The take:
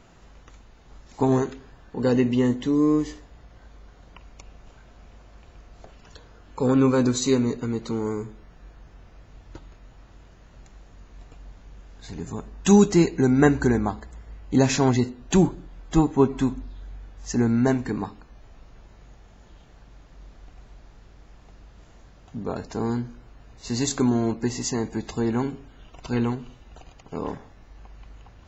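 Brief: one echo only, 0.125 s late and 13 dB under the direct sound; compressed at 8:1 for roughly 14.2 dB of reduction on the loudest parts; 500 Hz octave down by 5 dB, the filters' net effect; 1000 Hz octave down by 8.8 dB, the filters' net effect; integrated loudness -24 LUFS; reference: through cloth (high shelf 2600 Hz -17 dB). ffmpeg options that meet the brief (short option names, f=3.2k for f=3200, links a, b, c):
-af "equalizer=f=500:t=o:g=-5,equalizer=f=1k:t=o:g=-7,acompressor=threshold=-28dB:ratio=8,highshelf=f=2.6k:g=-17,aecho=1:1:125:0.224,volume=11dB"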